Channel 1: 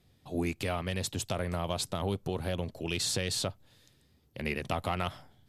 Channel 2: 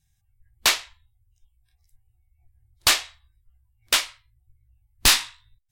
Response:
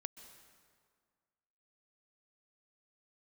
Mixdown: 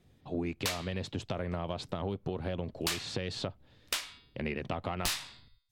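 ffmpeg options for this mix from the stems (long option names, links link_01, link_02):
-filter_complex "[0:a]lowpass=3600,equalizer=frequency=300:width_type=o:width=2.3:gain=3.5,volume=0dB[link_01];[1:a]bandreject=frequency=140.6:width_type=h:width=4,bandreject=frequency=281.2:width_type=h:width=4,bandreject=frequency=421.8:width_type=h:width=4,bandreject=frequency=562.4:width_type=h:width=4,bandreject=frequency=703:width_type=h:width=4,bandreject=frequency=843.6:width_type=h:width=4,bandreject=frequency=984.2:width_type=h:width=4,bandreject=frequency=1124.8:width_type=h:width=4,bandreject=frequency=1265.4:width_type=h:width=4,bandreject=frequency=1406:width_type=h:width=4,bandreject=frequency=1546.6:width_type=h:width=4,bandreject=frequency=1687.2:width_type=h:width=4,bandreject=frequency=1827.8:width_type=h:width=4,bandreject=frequency=1968.4:width_type=h:width=4,bandreject=frequency=2109:width_type=h:width=4,bandreject=frequency=2249.6:width_type=h:width=4,bandreject=frequency=2390.2:width_type=h:width=4,bandreject=frequency=2530.8:width_type=h:width=4,bandreject=frequency=2671.4:width_type=h:width=4,bandreject=frequency=2812:width_type=h:width=4,bandreject=frequency=2952.6:width_type=h:width=4,bandreject=frequency=3093.2:width_type=h:width=4,bandreject=frequency=3233.8:width_type=h:width=4,bandreject=frequency=3374.4:width_type=h:width=4,bandreject=frequency=3515:width_type=h:width=4,bandreject=frequency=3655.6:width_type=h:width=4,bandreject=frequency=3796.2:width_type=h:width=4,bandreject=frequency=3936.8:width_type=h:width=4,bandreject=frequency=4077.4:width_type=h:width=4,bandreject=frequency=4218:width_type=h:width=4,bandreject=frequency=4358.6:width_type=h:width=4,bandreject=frequency=4499.2:width_type=h:width=4,bandreject=frequency=4639.8:width_type=h:width=4,bandreject=frequency=4780.4:width_type=h:width=4,bandreject=frequency=4921:width_type=h:width=4,volume=-6dB[link_02];[link_01][link_02]amix=inputs=2:normalize=0,acompressor=threshold=-31dB:ratio=4"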